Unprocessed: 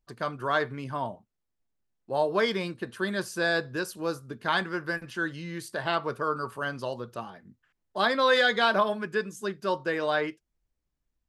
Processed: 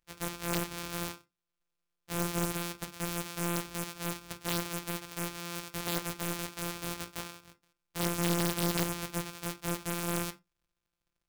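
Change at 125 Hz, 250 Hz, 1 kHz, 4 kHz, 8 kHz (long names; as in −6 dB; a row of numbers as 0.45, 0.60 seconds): +2.5, −1.5, −10.5, −5.5, +10.5 decibels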